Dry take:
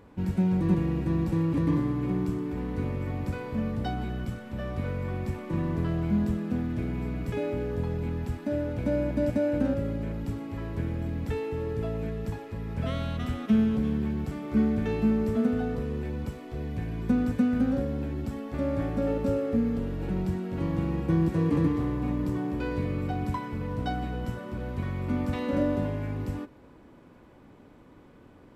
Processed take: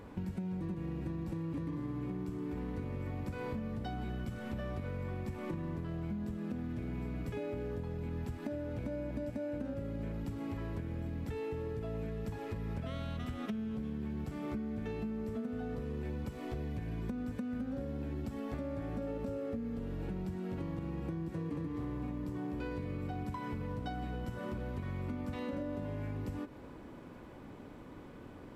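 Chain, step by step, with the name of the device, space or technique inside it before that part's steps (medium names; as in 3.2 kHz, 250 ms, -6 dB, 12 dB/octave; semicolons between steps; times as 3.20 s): serial compression, peaks first (compression 5:1, threshold -35 dBFS, peak gain reduction 15 dB; compression 2.5:1, threshold -40 dBFS, peak gain reduction 6.5 dB); trim +3 dB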